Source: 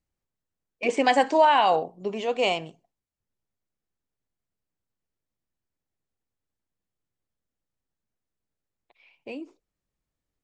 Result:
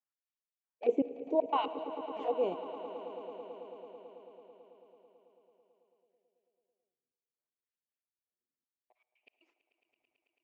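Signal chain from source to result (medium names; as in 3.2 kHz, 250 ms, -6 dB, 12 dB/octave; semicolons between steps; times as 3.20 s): LFO band-pass sine 0.67 Hz 270–2700 Hz; touch-sensitive flanger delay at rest 8.3 ms, full sweep at -29.5 dBFS; trance gate "x.x..xxx..x." 118 bpm -60 dB; on a send: echo with a slow build-up 110 ms, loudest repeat 5, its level -16.5 dB; on the sum: algorithmic reverb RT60 2.1 s, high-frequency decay 0.8×, pre-delay 15 ms, DRR 15.5 dB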